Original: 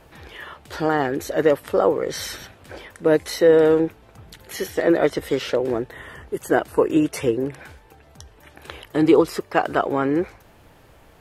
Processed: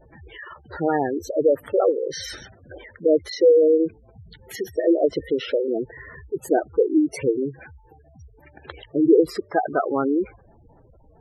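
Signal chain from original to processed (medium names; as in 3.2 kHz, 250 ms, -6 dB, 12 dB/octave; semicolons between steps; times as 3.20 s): spectral gate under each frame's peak -10 dB strong; 1.91–2.91 s: dynamic bell 130 Hz, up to -4 dB, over -45 dBFS, Q 0.71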